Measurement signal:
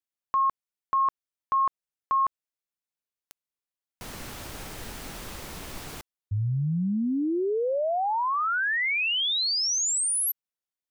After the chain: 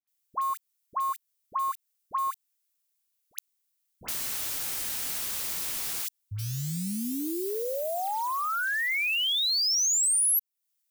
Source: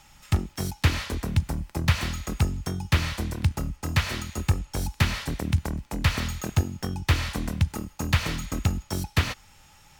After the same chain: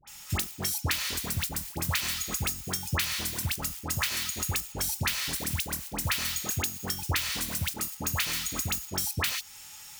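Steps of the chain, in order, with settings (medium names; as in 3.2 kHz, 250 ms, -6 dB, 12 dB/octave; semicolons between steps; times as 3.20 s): block-companded coder 5-bit; tilt EQ +4.5 dB/octave; phase dispersion highs, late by 76 ms, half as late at 1.1 kHz; compression 2.5:1, threshold -30 dBFS; bass shelf 200 Hz +9.5 dB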